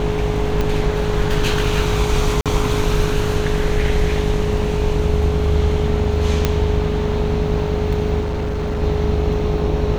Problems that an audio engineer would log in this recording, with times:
buzz 50 Hz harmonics 18 -23 dBFS
tone 420 Hz -22 dBFS
0.61 pop -8 dBFS
2.41–2.46 gap 47 ms
6.45 pop -2 dBFS
8.2–8.83 clipped -18.5 dBFS

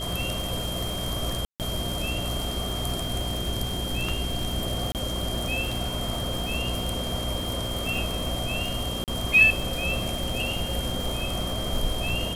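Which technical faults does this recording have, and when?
crackle 160/s -31 dBFS
hum 60 Hz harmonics 7 -33 dBFS
tone 3200 Hz -33 dBFS
1.45–1.6 gap 0.148 s
4.92–4.95 gap 28 ms
9.04–9.08 gap 38 ms

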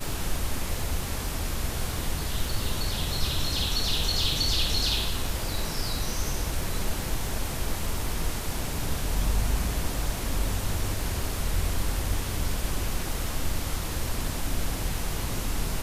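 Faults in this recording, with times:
crackle 16/s -32 dBFS

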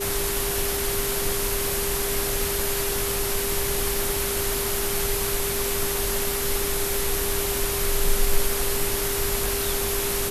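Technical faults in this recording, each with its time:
tone 400 Hz -29 dBFS

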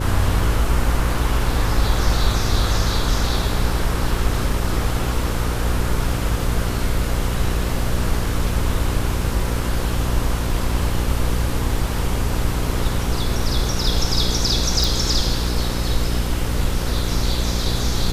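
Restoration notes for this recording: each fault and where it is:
buzz 60 Hz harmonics 9 -24 dBFS
14.84 pop

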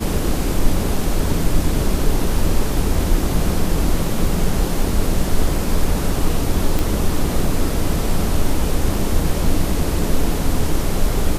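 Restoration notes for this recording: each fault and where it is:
6.79 pop

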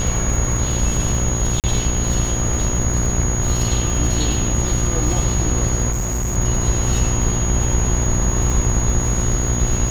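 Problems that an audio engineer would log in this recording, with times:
buzz 60 Hz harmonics 36 -23 dBFS
crackle 99/s -26 dBFS
tone 6700 Hz -24 dBFS
1.6–1.64 gap 38 ms
5.92–6.37 clipped -18 dBFS
8.5 gap 2.7 ms

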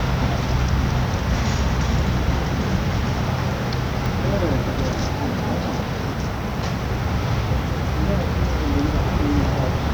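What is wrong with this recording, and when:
4.06 pop

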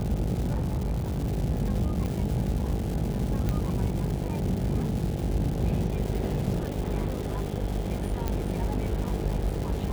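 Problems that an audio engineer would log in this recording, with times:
buzz 50 Hz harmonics 17 -32 dBFS
crackle 470/s -33 dBFS
0.51–1.29 clipped -24 dBFS
2.06 pop -19 dBFS
3.49 pop -15 dBFS
8.28 pop -15 dBFS

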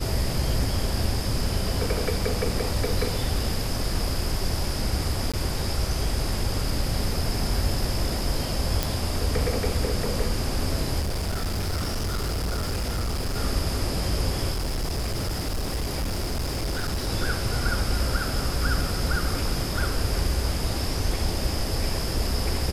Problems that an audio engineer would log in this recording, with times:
5.32–5.34 gap 16 ms
8.83 pop
11–13.38 clipped -23.5 dBFS
14.52–17.09 clipped -23.5 dBFS

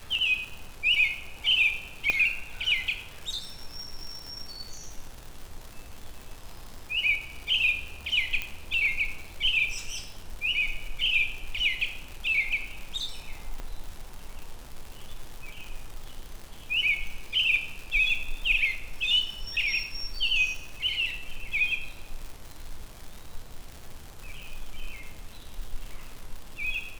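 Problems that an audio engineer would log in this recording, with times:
crackle 200/s -35 dBFS
2.1 pop -12 dBFS
8.42 pop -16 dBFS
13.6 pop -23 dBFS

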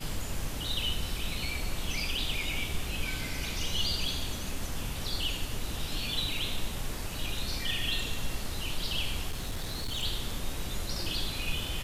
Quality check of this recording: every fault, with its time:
9.3–10.03 clipped -29.5 dBFS

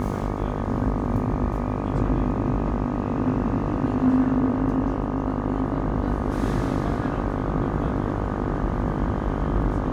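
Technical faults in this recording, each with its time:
buzz 50 Hz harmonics 25 -28 dBFS

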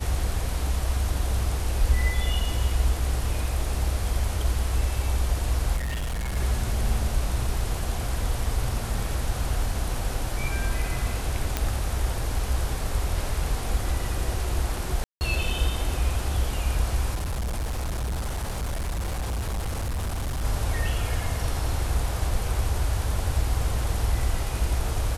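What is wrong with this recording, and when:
5.76–6.37 clipped -25.5 dBFS
11.57 pop -9 dBFS
15.04–15.21 gap 0.169 s
17.14–20.45 clipped -25 dBFS

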